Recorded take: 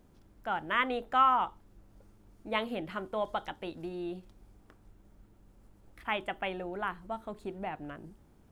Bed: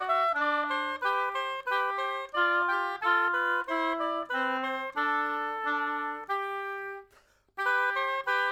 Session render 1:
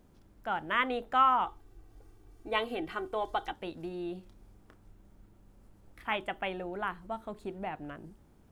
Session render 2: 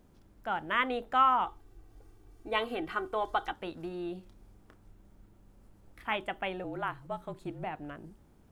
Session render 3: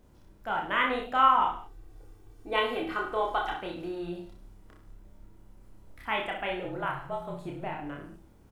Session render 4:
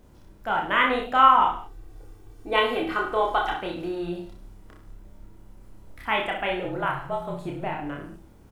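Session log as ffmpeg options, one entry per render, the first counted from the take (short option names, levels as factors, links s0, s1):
-filter_complex "[0:a]asettb=1/sr,asplit=3[s0][s1][s2];[s0]atrim=end=1.454[s3];[s1]atrim=start=1.45:end=3.53,asetpts=PTS-STARTPTS,afade=t=in:d=0.004:c=qsin,afade=t=out:st=2.076:d=0.004:c=qsin,aecho=1:1:2.6:0.7,atrim=end_sample=91728[s4];[s2]atrim=start=3.526[s5];[s3][s4]acrossfade=d=0.004:c1=hsin:c2=qsin[s6];[s6][s5]acrossfade=d=0.004:c1=qsin:c2=hsin,asettb=1/sr,asplit=3[s7][s8][s9];[s7]atrim=end=4.164[s10];[s8]atrim=start=4.16:end=6.16,asetpts=PTS-STARTPTS,afade=t=in:d=0.004:c=qsin,afade=t=out:st=1.996:d=0.004:c=qsin,asplit=2[s11][s12];[s12]adelay=31,volume=0.299[s13];[s11][s13]amix=inputs=2:normalize=0,atrim=end_sample=88200[s14];[s9]atrim=start=6.156[s15];[s10][s14]acrossfade=d=0.004:c1=hsin:c2=qsin[s16];[s16][s15]acrossfade=d=0.004:c1=qsin:c2=hsin"
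-filter_complex "[0:a]asettb=1/sr,asplit=3[s0][s1][s2];[s0]atrim=end=2.614[s3];[s1]atrim=start=2.61:end=4.09,asetpts=PTS-STARTPTS,afade=t=in:d=0.004:c=qsin,afade=t=out:st=1.476:d=0.004:c=qsin,equalizer=f=1300:w=1.9:g=5.5[s4];[s2]atrim=start=4.086[s5];[s3][s4]acrossfade=d=0.004:c1=hsin:c2=qsin[s6];[s6][s5]acrossfade=d=0.004:c1=qsin:c2=hsin,asettb=1/sr,asplit=3[s7][s8][s9];[s7]atrim=end=6.644[s10];[s8]atrim=start=6.64:end=7.64,asetpts=PTS-STARTPTS,afade=t=in:d=0.004:c=qsin,afade=t=out:st=0.996:d=0.004:c=qsin,afreqshift=-40[s11];[s9]atrim=start=7.636[s12];[s10][s11]acrossfade=d=0.004:c1=hsin:c2=qsin[s13];[s13][s12]acrossfade=d=0.004:c1=qsin:c2=hsin"
-filter_complex "[0:a]asplit=2[s0][s1];[s1]adelay=28,volume=0.562[s2];[s0][s2]amix=inputs=2:normalize=0,aecho=1:1:30|64.5|104.2|149.8|202.3:0.631|0.398|0.251|0.158|0.1"
-af "volume=1.88"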